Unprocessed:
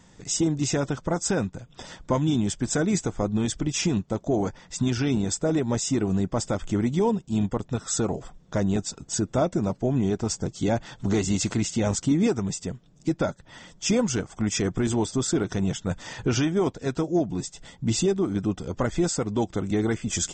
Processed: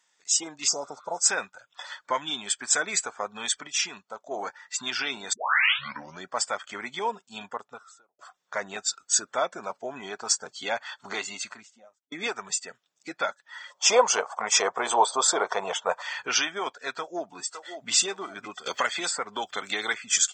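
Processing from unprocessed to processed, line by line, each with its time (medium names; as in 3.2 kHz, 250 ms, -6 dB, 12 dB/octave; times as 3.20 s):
0.70–1.16 s: spectral replace 1–4.4 kHz after
3.67–4.31 s: gain -4.5 dB
5.33 s: tape start 0.94 s
7.40–8.19 s: studio fade out
10.96–12.12 s: studio fade out
13.70–16.02 s: high-order bell 700 Hz +13.5 dB
16.93–17.91 s: echo throw 560 ms, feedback 35%, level -7.5 dB
18.66–19.93 s: three bands compressed up and down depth 100%
whole clip: high-pass 1.2 kHz 12 dB/octave; level rider gain up to 4 dB; spectral noise reduction 13 dB; trim +4 dB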